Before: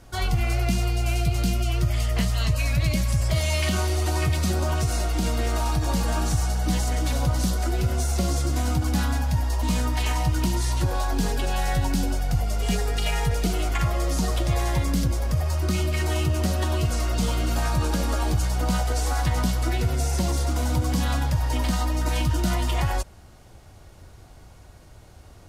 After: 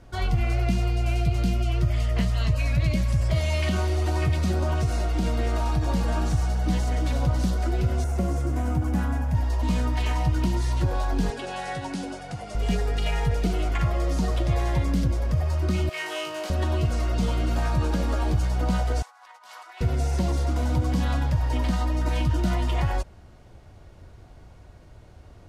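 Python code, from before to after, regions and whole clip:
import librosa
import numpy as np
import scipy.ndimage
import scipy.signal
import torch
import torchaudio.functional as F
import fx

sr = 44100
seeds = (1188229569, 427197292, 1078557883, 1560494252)

y = fx.chain(x, sr, fx.highpass(hz=57.0, slope=12),
    fx.peak_eq(hz=4100.0, db=-11.5, octaves=1.1),
    fx.quant_companded(bits=8), at=(8.04, 9.35))
y = fx.chain(y, sr, fx.highpass(hz=120.0, slope=12),
    fx.low_shelf(hz=220.0, db=-9.5),
    fx.resample_bad(factor=2, down='none', up='filtered'), at=(11.3, 12.55))
y = fx.chain(y, sr, fx.highpass(hz=820.0, slope=12),
    fx.room_flutter(wall_m=3.3, rt60_s=0.39), at=(15.89, 16.5))
y = fx.chain(y, sr, fx.ladder_highpass(hz=840.0, resonance_pct=45),
    fx.over_compress(threshold_db=-43.0, ratio=-0.5), at=(19.02, 19.81))
y = fx.lowpass(y, sr, hz=2400.0, slope=6)
y = fx.peak_eq(y, sr, hz=1200.0, db=-2.0, octaves=0.77)
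y = fx.notch(y, sr, hz=800.0, q=19.0)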